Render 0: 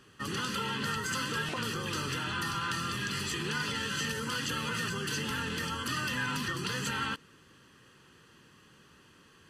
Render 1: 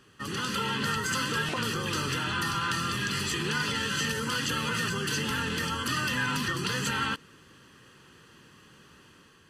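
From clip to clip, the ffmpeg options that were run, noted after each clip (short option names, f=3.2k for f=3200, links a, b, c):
-af "dynaudnorm=f=120:g=7:m=4dB"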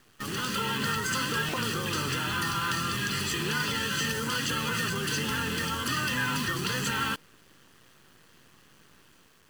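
-af "acrusher=bits=7:dc=4:mix=0:aa=0.000001"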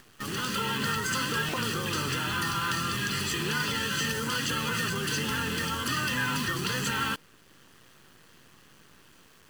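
-af "acompressor=mode=upward:threshold=-49dB:ratio=2.5"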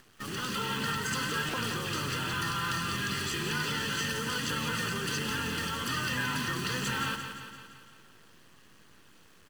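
-af "aecho=1:1:172|344|516|688|860|1032|1204:0.398|0.231|0.134|0.0777|0.0451|0.0261|0.0152,volume=-3.5dB" -ar 44100 -c:a nellymoser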